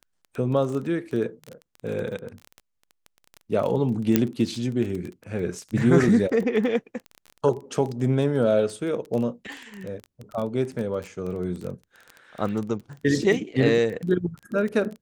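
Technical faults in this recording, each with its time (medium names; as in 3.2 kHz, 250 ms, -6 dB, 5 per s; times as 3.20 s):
crackle 17 per s -29 dBFS
4.16 s: pop -5 dBFS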